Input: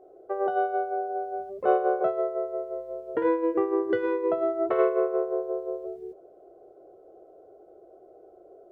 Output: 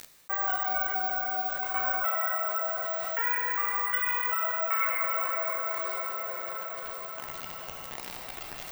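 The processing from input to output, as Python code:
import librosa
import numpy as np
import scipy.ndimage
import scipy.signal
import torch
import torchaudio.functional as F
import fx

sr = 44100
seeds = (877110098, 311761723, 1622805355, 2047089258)

y = scipy.signal.sosfilt(scipy.signal.butter(4, 1100.0, 'highpass', fs=sr, output='sos'), x)
y = fx.peak_eq(y, sr, hz=2200.0, db=12.5, octaves=0.4)
y = fx.rider(y, sr, range_db=4, speed_s=2.0)
y = fx.step_gate(y, sr, bpm=138, pattern='x.xxx.xxxx', floor_db=-24.0, edge_ms=4.5)
y = fx.quant_dither(y, sr, seeds[0], bits=10, dither='none')
y = fx.chorus_voices(y, sr, voices=2, hz=0.99, base_ms=13, depth_ms=3.0, mix_pct=55)
y = fx.rev_plate(y, sr, seeds[1], rt60_s=3.6, hf_ratio=0.75, predelay_ms=0, drr_db=2.0)
y = (np.kron(scipy.signal.resample_poly(y, 1, 2), np.eye(2)[0]) * 2)[:len(y)]
y = fx.env_flatten(y, sr, amount_pct=70)
y = y * 10.0 ** (1.5 / 20.0)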